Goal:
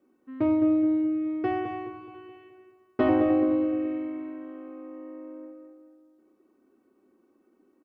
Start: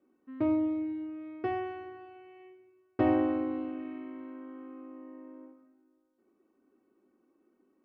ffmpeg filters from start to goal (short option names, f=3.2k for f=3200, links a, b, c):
-filter_complex "[0:a]asettb=1/sr,asplit=3[a][b][c];[a]atrim=end=2.144[d];[b]atrim=start=2.14:end=3.09,asetpts=PTS-STARTPTS,afade=t=in:d=0.004:c=qsin,afade=t=out:st=0.946:d=0.004:c=qsin,aecho=1:1:4.7:0.75,atrim=end_sample=41895[e];[c]atrim=start=3.086[f];[d][e]acrossfade=d=0.004:c1=hsin:c2=qsin[g];[g][f]acrossfade=d=0.004:c1=qsin:c2=hsin,asplit=2[h][i];[i]adelay=212,lowpass=f=1.7k:p=1,volume=-5.5dB,asplit=2[j][k];[k]adelay=212,lowpass=f=1.7k:p=1,volume=0.46,asplit=2[l][m];[m]adelay=212,lowpass=f=1.7k:p=1,volume=0.46,asplit=2[n][o];[o]adelay=212,lowpass=f=1.7k:p=1,volume=0.46,asplit=2[p][q];[q]adelay=212,lowpass=f=1.7k:p=1,volume=0.46,asplit=2[r][s];[s]adelay=212,lowpass=f=1.7k:p=1,volume=0.46[t];[j][l][n][p][r][t]amix=inputs=6:normalize=0[u];[h][u]amix=inputs=2:normalize=0,volume=4dB"